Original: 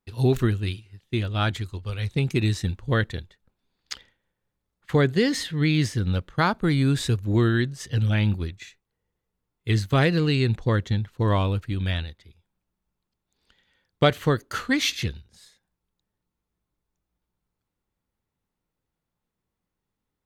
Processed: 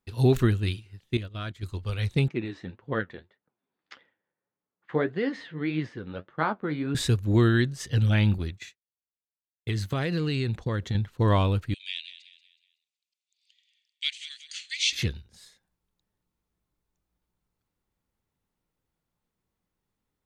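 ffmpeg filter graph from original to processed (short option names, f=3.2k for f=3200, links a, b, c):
-filter_complex "[0:a]asettb=1/sr,asplit=3[a][b][c];[a]atrim=end=1.174[d];[b]atrim=start=1.17:end=1.63,asetpts=PTS-STARTPTS,afade=t=in:d=0.004:c=qsin,afade=t=out:st=0.456:d=0.004:c=qsin,agate=range=-15dB:threshold=-28dB:ratio=16:release=100:detection=peak,acompressor=threshold=-39dB:ratio=2:attack=3.2:release=140:knee=1:detection=peak,asuperstop=centerf=820:order=4:qfactor=4.6[e];[c]atrim=start=1.626[f];[d][e]acrossfade=d=0.004:c1=hsin:c2=qsin[g];[g][f]acrossfade=d=0.004:c1=qsin:c2=hsin,asettb=1/sr,asplit=3[h][i][j];[h]atrim=end=2.284[k];[i]atrim=start=2.28:end=6.95,asetpts=PTS-STARTPTS,afade=t=in:d=0.004:c=qsin,afade=t=out:st=4.666:d=0.004:c=qsin,highpass=230,lowpass=2k,flanger=delay=5.6:depth=8.8:regen=43:speed=1.7:shape=triangular[l];[j]atrim=start=6.946[m];[k][l]acrossfade=d=0.004:c1=hsin:c2=qsin[n];[n][m]acrossfade=d=0.004:c1=qsin:c2=hsin,asettb=1/sr,asplit=3[o][p][q];[o]atrim=end=8.384[r];[p]atrim=start=8.38:end=10.95,asetpts=PTS-STARTPTS,afade=t=in:d=0.004:c=qsin,afade=t=out:st=2.566:d=0.004:c=qsin,highpass=50,agate=range=-33dB:threshold=-44dB:ratio=3:release=100:detection=peak,acompressor=threshold=-24dB:ratio=6:attack=3.2:release=140:knee=1:detection=peak[s];[q]atrim=start=10.946[t];[r][s]acrossfade=d=0.004:c1=hsin:c2=qsin[u];[u][t]acrossfade=d=0.004:c1=qsin:c2=hsin,asettb=1/sr,asplit=3[v][w][x];[v]atrim=end=11.744[y];[w]atrim=start=11.74:end=14.93,asetpts=PTS-STARTPTS,afade=t=in:d=0.004:c=qsin,afade=t=out:st=3.186:d=0.004:c=qsin,asuperpass=centerf=4600:order=12:qfactor=0.71,aecho=1:1:186|372|558|744:0.224|0.0873|0.0341|0.0133,atrim=end_sample=140679[z];[x]atrim=start=14.926[aa];[y][z]acrossfade=d=0.004:c1=hsin:c2=qsin[ab];[ab][aa]acrossfade=d=0.004:c1=qsin:c2=hsin"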